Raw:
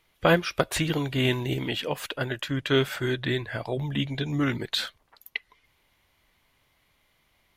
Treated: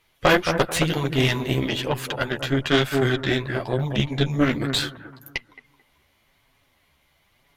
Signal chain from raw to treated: analogue delay 0.219 s, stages 2048, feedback 38%, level -8 dB; chorus voices 2, 1 Hz, delay 11 ms, depth 4 ms; added harmonics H 6 -16 dB, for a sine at -9.5 dBFS; gain +6 dB

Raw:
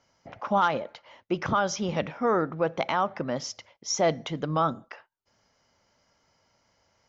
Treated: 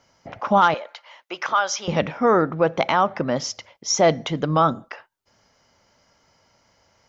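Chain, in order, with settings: 0.74–1.88 HPF 830 Hz 12 dB/oct; gain +7 dB

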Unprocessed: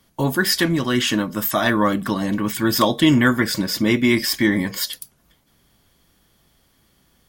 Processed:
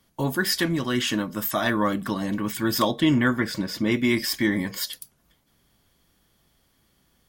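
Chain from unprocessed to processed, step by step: 2.91–3.92 high shelf 5300 Hz -8.5 dB; gain -5 dB

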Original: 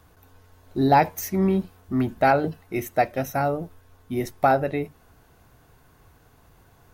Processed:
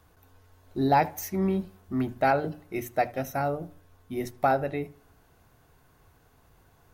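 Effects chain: notches 60/120/180/240/300 Hz; darkening echo 77 ms, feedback 41%, low-pass 1900 Hz, level -20 dB; gain -4.5 dB

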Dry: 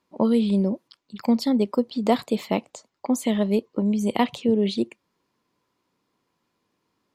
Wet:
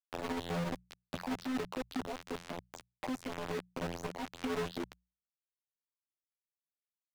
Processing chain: self-modulated delay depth 0.073 ms; compressor 16:1, threshold -30 dBFS, peak gain reduction 17.5 dB; soft clip -22 dBFS, distortion -22 dB; bell 930 Hz +3.5 dB 2.2 oct; robotiser 85.8 Hz; bell 98 Hz +5.5 dB 0.33 oct; requantised 6-bit, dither none; limiter -37 dBFS, peak gain reduction 19 dB; LPF 3500 Hz 6 dB/oct; notches 60/120/180 Hz; three-band squash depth 40%; gain +9 dB

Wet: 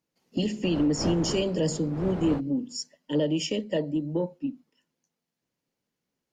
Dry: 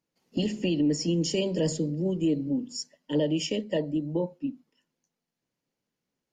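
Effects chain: 0.63–2.39 wind noise 490 Hz -29 dBFS; added harmonics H 5 -34 dB, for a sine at -12.5 dBFS

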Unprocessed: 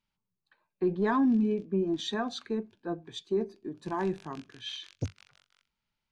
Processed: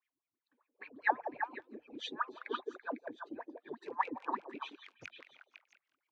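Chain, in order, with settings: median-filter separation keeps percussive; wah 5 Hz 230–2500 Hz, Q 9.6; delay with a stepping band-pass 0.167 s, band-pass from 440 Hz, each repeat 1.4 oct, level -1 dB; gain +15.5 dB

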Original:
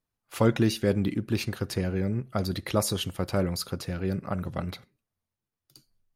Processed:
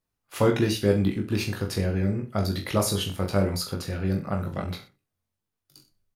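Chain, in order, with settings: reverse bouncing-ball echo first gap 20 ms, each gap 1.1×, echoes 5

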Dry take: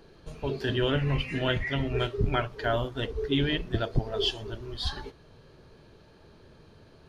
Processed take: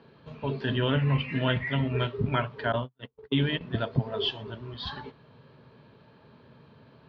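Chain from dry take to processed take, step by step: 2.72–3.61 gate -27 dBFS, range -45 dB; speaker cabinet 120–3800 Hz, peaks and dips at 130 Hz +7 dB, 240 Hz +6 dB, 340 Hz -7 dB, 990 Hz +5 dB; notch 750 Hz, Q 15

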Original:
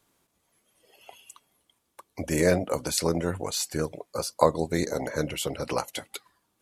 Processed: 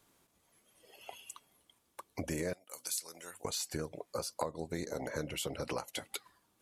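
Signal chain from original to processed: 2.53–3.45 differentiator; compressor 5:1, threshold -35 dBFS, peak gain reduction 19 dB

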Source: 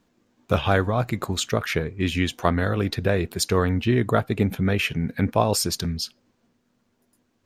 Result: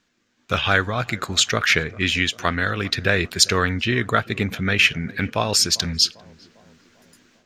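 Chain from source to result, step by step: AGC gain up to 15 dB; band shelf 3100 Hz +11.5 dB 2.8 oct; on a send: tape echo 0.398 s, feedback 66%, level -18.5 dB, low-pass 1000 Hz; on the sum: gain -6.5 dB

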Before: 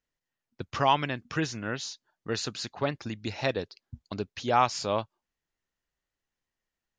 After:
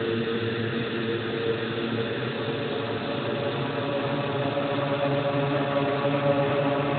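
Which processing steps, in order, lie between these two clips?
Paulstretch 14×, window 1.00 s, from 2.36; Schroeder reverb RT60 1.2 s, combs from 31 ms, DRR 15.5 dB; gain +8 dB; Speex 15 kbps 8000 Hz

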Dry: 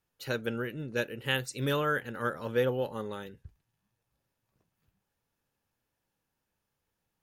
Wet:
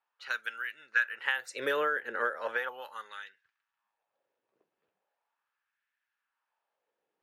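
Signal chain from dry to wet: low-pass opened by the level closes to 2900 Hz, open at -28.5 dBFS; 0.93–2.69 bell 1700 Hz +13.5 dB 1.1 oct; compressor 16:1, threshold -27 dBFS, peak gain reduction 13.5 dB; LFO high-pass sine 0.38 Hz 400–1700 Hz; gain -1 dB

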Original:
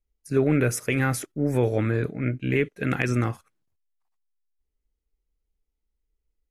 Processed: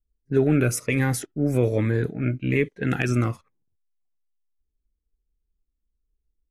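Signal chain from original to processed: low-pass opened by the level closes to 380 Hz, open at -21 dBFS; cascading phaser falling 1.2 Hz; gain +2 dB

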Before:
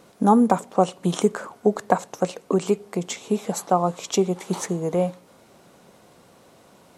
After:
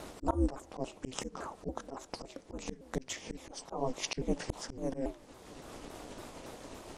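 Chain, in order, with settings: repeated pitch sweeps -6 st, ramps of 0.281 s; ring modulator 130 Hz; auto swell 0.78 s; gain +9.5 dB

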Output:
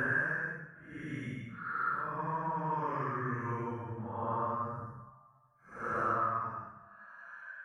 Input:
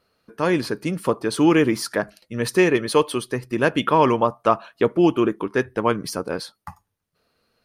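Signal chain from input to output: EQ curve 150 Hz 0 dB, 280 Hz -11 dB, 770 Hz -12 dB, 1700 Hz +8 dB, 2500 Hz -17 dB, 3800 Hz -28 dB, 5700 Hz -12 dB; compressor 6:1, threshold -30 dBFS, peak gain reduction 15 dB; Paulstretch 7.1×, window 0.10 s, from 3.62; gain -2.5 dB

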